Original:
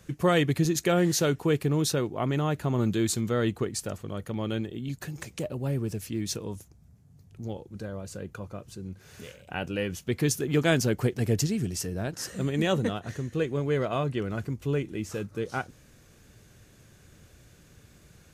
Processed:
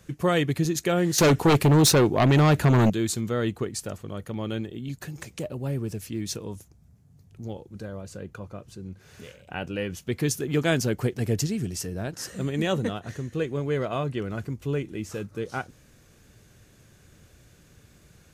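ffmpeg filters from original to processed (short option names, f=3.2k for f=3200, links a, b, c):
-filter_complex "[0:a]asettb=1/sr,asplit=3[a][b][c];[a]atrim=end=1.184[d];[b]atrim=start=1.18:end=2.9,asetpts=PTS-STARTPTS,afade=t=in:d=0.004:c=qsin,afade=t=out:st=1.716:d=0.004:c=qsin,aeval=exprs='0.2*sin(PI/2*2.51*val(0)/0.2)':c=same[e];[c]atrim=start=2.896[f];[d][e]acrossfade=d=0.004:c1=hsin:c2=qsin[g];[g][f]acrossfade=d=0.004:c1=qsin:c2=hsin,asettb=1/sr,asplit=3[h][i][j];[h]atrim=end=8.024[k];[i]atrim=start=8.02:end=9.97,asetpts=PTS-STARTPTS,afade=t=in:d=0.004:c=qsin,afade=t=out:st=1.946:d=0.004:c=qsin,highshelf=f=7k:g=-5[l];[j]atrim=start=9.966[m];[k][l]acrossfade=d=0.004:c1=hsin:c2=qsin[n];[n][m]acrossfade=d=0.004:c1=qsin:c2=hsin"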